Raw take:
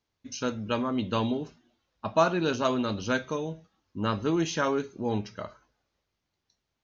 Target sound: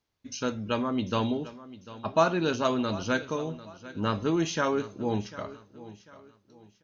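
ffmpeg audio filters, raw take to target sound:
-af "aecho=1:1:746|1492|2238:0.141|0.048|0.0163"

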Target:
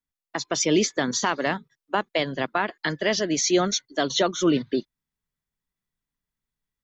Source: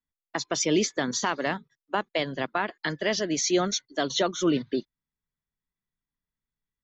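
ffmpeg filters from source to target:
-af "dynaudnorm=f=310:g=3:m=3dB"

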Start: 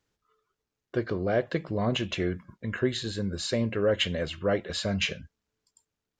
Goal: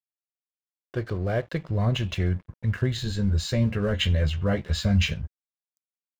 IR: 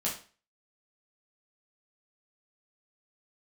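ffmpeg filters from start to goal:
-filter_complex "[0:a]asubboost=boost=11.5:cutoff=110,aeval=exprs='sgn(val(0))*max(abs(val(0))-0.00422,0)':c=same,asettb=1/sr,asplit=3[a][b][c];[a]atrim=end=2.974[d];[b]atrim=start=2.97:end=5.14,asetpts=PTS-STARTPTS,afade=t=in:d=0.004:c=qsin,afade=t=out:st=2.166:d=0.004:c=qsin,asplit=2[e][f];[f]adelay=14,volume=-5dB[g];[e][g]amix=inputs=2:normalize=0,atrim=end_sample=95697[h];[c]atrim=start=5.136[i];[d][h]acrossfade=d=0.004:c1=hsin:c2=qsin[j];[j][i]acrossfade=d=0.004:c1=qsin:c2=hsin"

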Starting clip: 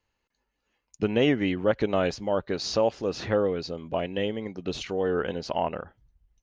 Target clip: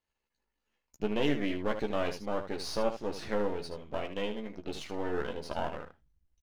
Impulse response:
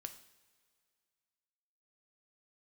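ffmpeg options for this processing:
-af "aeval=exprs='if(lt(val(0),0),0.251*val(0),val(0))':c=same,equalizer=f=110:t=o:w=0.26:g=-7.5,aecho=1:1:14|77:0.562|0.355,volume=-5.5dB"

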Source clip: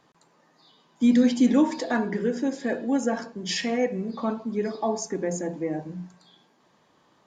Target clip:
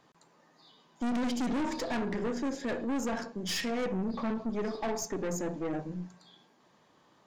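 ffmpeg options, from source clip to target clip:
-filter_complex "[0:a]asettb=1/sr,asplit=3[a][b][c];[a]atrim=end=3.864[d];[b]atrim=start=3.86:end=4.5,asetpts=PTS-STARTPTS,afade=t=in:d=0.004:c=qsin,afade=t=out:st=0.636:d=0.004:c=qsin,lowshelf=f=170:g=9.5[e];[c]atrim=start=4.496[f];[d][e]acrossfade=d=0.004:c1=hsin:c2=qsin[g];[g][f]acrossfade=d=0.004:c1=qsin:c2=hsin,aeval=exprs='(tanh(28.2*val(0)+0.45)-tanh(0.45))/28.2':c=same"

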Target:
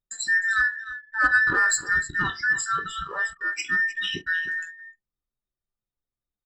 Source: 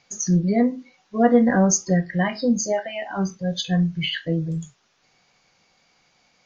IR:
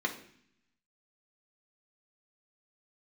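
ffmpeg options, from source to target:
-filter_complex "[0:a]afftfilt=real='real(if(between(b,1,1012),(2*floor((b-1)/92)+1)*92-b,b),0)':imag='imag(if(between(b,1,1012),(2*floor((b-1)/92)+1)*92-b,b),0)*if(between(b,1,1012),-1,1)':win_size=2048:overlap=0.75,aecho=1:1:307:0.188,asplit=2[a][b];[b]asoftclip=type=tanh:threshold=-16.5dB,volume=-7.5dB[c];[a][c]amix=inputs=2:normalize=0,anlmdn=0.631,volume=-6dB"

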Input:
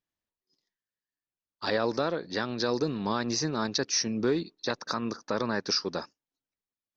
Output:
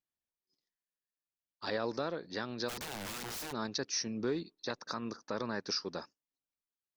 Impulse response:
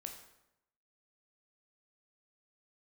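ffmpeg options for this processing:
-filter_complex "[0:a]asplit=3[a][b][c];[a]afade=t=out:st=2.68:d=0.02[d];[b]aeval=exprs='(mod(26.6*val(0)+1,2)-1)/26.6':c=same,afade=t=in:st=2.68:d=0.02,afade=t=out:st=3.51:d=0.02[e];[c]afade=t=in:st=3.51:d=0.02[f];[d][e][f]amix=inputs=3:normalize=0,volume=-7.5dB"

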